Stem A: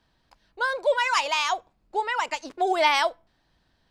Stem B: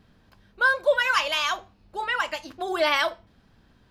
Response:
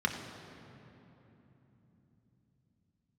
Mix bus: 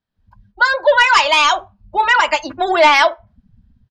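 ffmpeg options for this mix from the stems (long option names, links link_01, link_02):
-filter_complex "[0:a]highpass=frequency=520:width=0.5412,highpass=frequency=520:width=1.3066,asplit=2[link_01][link_02];[link_02]highpass=frequency=720:poles=1,volume=8dB,asoftclip=type=tanh:threshold=-6.5dB[link_03];[link_01][link_03]amix=inputs=2:normalize=0,lowpass=frequency=6600:poles=1,volume=-6dB,volume=1dB[link_04];[1:a]dynaudnorm=framelen=110:gausssize=3:maxgain=13dB,asoftclip=type=tanh:threshold=-12dB,volume=-1,adelay=0.5,volume=-5.5dB[link_05];[link_04][link_05]amix=inputs=2:normalize=0,acontrast=85,afftdn=noise_reduction=30:noise_floor=-30"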